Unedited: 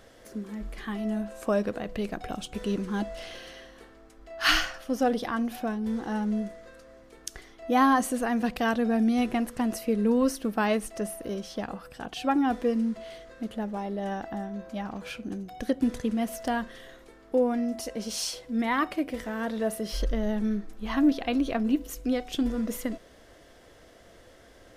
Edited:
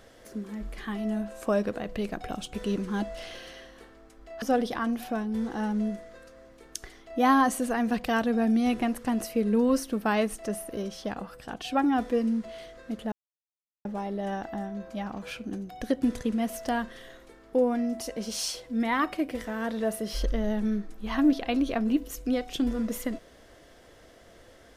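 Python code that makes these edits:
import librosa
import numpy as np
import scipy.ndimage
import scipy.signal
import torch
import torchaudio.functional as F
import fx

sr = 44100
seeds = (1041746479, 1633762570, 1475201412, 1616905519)

y = fx.edit(x, sr, fx.cut(start_s=4.42, length_s=0.52),
    fx.insert_silence(at_s=13.64, length_s=0.73), tone=tone)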